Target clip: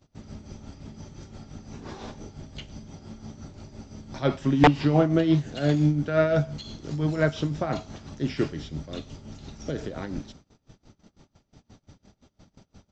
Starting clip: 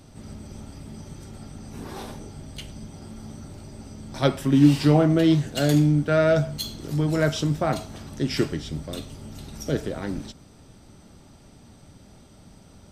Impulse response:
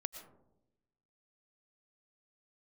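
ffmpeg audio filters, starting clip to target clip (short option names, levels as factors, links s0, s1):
-filter_complex "[0:a]tremolo=f=5.8:d=0.6,agate=range=0.1:threshold=0.00316:ratio=16:detection=peak,aresample=16000,aeval=exprs='(mod(2.51*val(0)+1,2)-1)/2.51':c=same,aresample=44100,acrossover=split=3500[s0][s1];[s1]acompressor=threshold=0.00447:ratio=4:attack=1:release=60[s2];[s0][s2]amix=inputs=2:normalize=0"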